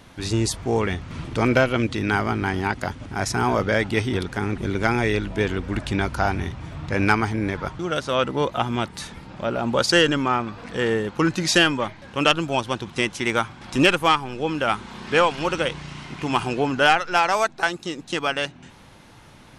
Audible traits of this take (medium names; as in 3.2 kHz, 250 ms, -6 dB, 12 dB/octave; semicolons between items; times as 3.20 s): noise floor -48 dBFS; spectral tilt -4.5 dB/octave